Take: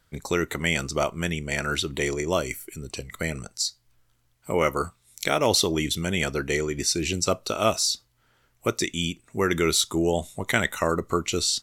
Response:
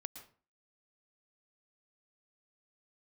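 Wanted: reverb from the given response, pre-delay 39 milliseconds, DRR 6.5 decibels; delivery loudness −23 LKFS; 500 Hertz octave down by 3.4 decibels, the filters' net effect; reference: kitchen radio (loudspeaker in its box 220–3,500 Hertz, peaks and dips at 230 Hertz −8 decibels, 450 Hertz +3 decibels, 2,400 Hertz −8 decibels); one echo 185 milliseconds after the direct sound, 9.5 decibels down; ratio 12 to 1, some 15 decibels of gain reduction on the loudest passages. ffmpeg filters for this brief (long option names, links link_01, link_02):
-filter_complex "[0:a]equalizer=frequency=500:width_type=o:gain=-5.5,acompressor=threshold=-34dB:ratio=12,aecho=1:1:185:0.335,asplit=2[link_01][link_02];[1:a]atrim=start_sample=2205,adelay=39[link_03];[link_02][link_03]afir=irnorm=-1:irlink=0,volume=-3dB[link_04];[link_01][link_04]amix=inputs=2:normalize=0,highpass=220,equalizer=frequency=230:width_type=q:width=4:gain=-8,equalizer=frequency=450:width_type=q:width=4:gain=3,equalizer=frequency=2400:width_type=q:width=4:gain=-8,lowpass=frequency=3500:width=0.5412,lowpass=frequency=3500:width=1.3066,volume=18dB"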